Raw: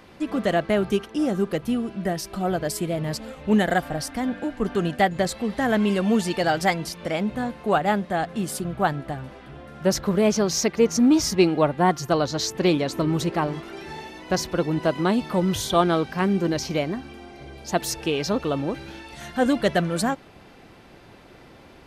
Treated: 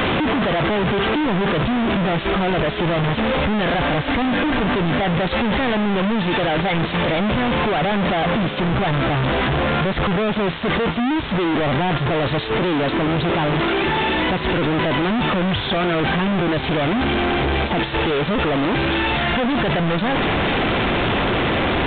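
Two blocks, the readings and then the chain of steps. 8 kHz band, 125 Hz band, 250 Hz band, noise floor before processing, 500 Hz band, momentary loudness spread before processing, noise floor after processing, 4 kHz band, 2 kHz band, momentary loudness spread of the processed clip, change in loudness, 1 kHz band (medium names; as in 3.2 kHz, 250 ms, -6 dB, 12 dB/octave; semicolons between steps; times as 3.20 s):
under -40 dB, +7.5 dB, +3.5 dB, -49 dBFS, +3.5 dB, 11 LU, -25 dBFS, +8.0 dB, +9.5 dB, 1 LU, +4.5 dB, +5.5 dB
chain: one-bit comparator; resampled via 8 kHz; trim +5.5 dB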